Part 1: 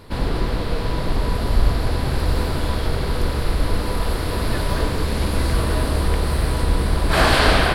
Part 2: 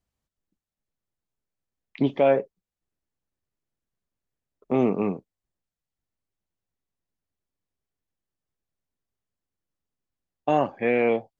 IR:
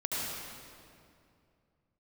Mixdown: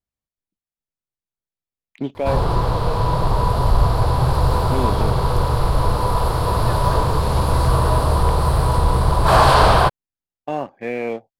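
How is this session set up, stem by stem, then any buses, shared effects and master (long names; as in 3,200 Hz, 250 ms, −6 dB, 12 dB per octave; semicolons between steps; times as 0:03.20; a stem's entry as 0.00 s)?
−3.5 dB, 2.15 s, no send, octave-band graphic EQ 125/250/500/1,000/2,000 Hz +10/−8/+3/+12/−9 dB
−7.0 dB, 0.00 s, no send, no processing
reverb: not used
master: leveller curve on the samples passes 1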